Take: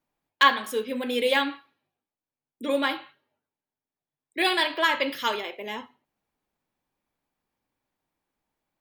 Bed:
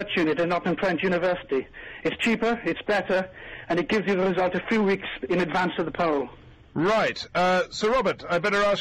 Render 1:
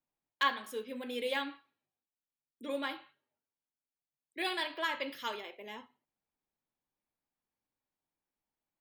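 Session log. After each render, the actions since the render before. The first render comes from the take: trim -11.5 dB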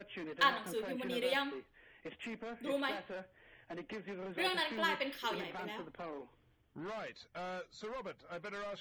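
add bed -21.5 dB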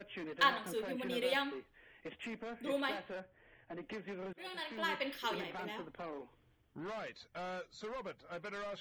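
3.20–3.83 s: distance through air 330 m; 4.33–5.09 s: fade in, from -23 dB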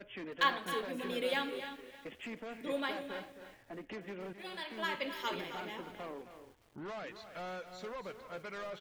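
delay 266 ms -11.5 dB; bit-crushed delay 310 ms, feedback 35%, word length 9-bit, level -13 dB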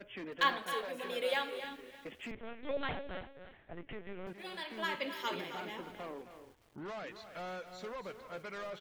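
0.62–1.64 s: resonant low shelf 410 Hz -7 dB, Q 1.5; 2.31–4.27 s: LPC vocoder at 8 kHz pitch kept; 4.97–5.69 s: high-pass 64 Hz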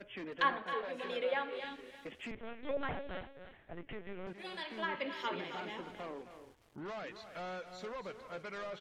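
low-pass that closes with the level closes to 2 kHz, closed at -31.5 dBFS

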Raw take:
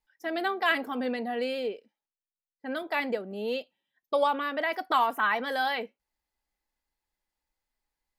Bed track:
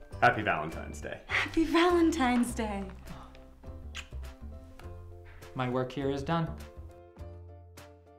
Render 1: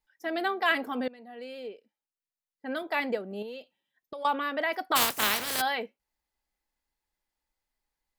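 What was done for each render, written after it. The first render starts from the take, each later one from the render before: 1.08–2.75 s: fade in, from -22 dB; 3.42–4.25 s: compression 12:1, threshold -36 dBFS; 4.95–5.60 s: spectral contrast reduction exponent 0.23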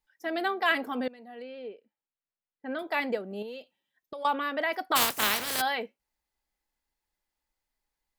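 1.42–2.79 s: distance through air 250 m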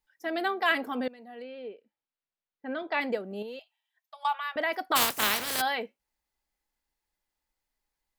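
1.44–3.01 s: low-pass 4.7 kHz 24 dB/octave; 3.59–4.56 s: rippled Chebyshev high-pass 640 Hz, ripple 3 dB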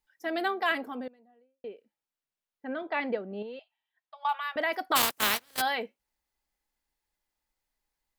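0.40–1.64 s: studio fade out; 2.67–4.29 s: distance through air 220 m; 5.02–5.58 s: gate -29 dBFS, range -28 dB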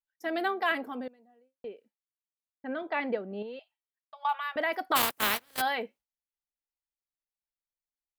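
gate with hold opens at -55 dBFS; dynamic bell 6 kHz, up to -5 dB, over -45 dBFS, Q 0.79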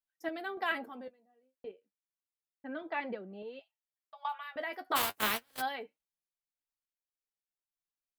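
flange 0.32 Hz, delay 5.2 ms, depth 6.5 ms, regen +36%; random-step tremolo 3.5 Hz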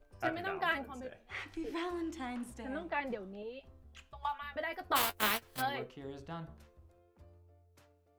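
add bed track -14 dB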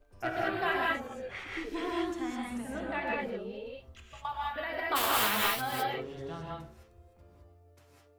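gated-style reverb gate 230 ms rising, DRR -3.5 dB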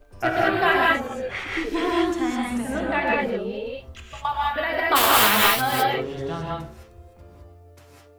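trim +11 dB

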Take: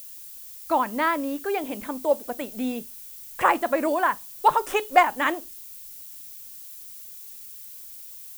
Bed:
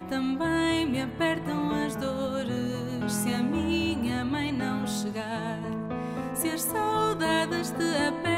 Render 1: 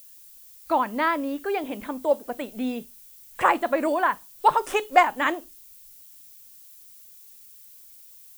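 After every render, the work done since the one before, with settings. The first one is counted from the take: noise print and reduce 7 dB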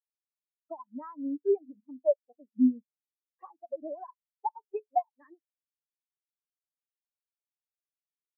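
compression 10:1, threshold -26 dBFS, peak gain reduction 16 dB; spectral contrast expander 4:1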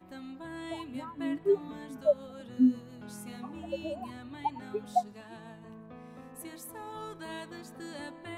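add bed -16 dB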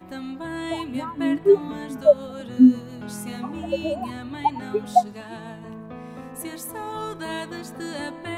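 trim +10.5 dB

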